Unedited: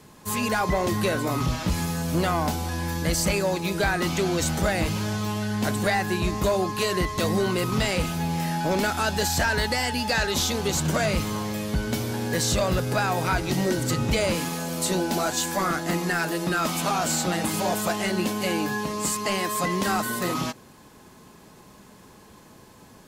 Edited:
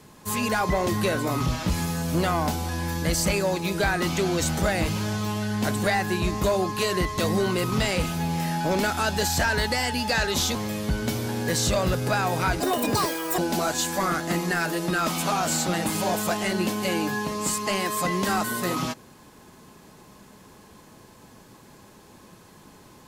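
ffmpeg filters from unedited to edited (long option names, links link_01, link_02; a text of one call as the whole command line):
ffmpeg -i in.wav -filter_complex "[0:a]asplit=4[link_01][link_02][link_03][link_04];[link_01]atrim=end=10.552[link_05];[link_02]atrim=start=11.398:end=13.454[link_06];[link_03]atrim=start=13.45:end=14.97,asetpts=PTS-STARTPTS,asetrate=85554,aresample=44100[link_07];[link_04]atrim=start=14.966[link_08];[link_05][link_06]acrossfade=duration=0.004:curve1=hsin:curve2=hsin[link_09];[link_09][link_07]acrossfade=duration=0.004:curve1=hsin:curve2=hsin[link_10];[link_10][link_08]acrossfade=duration=0.004:curve1=hsin:curve2=hsin" out.wav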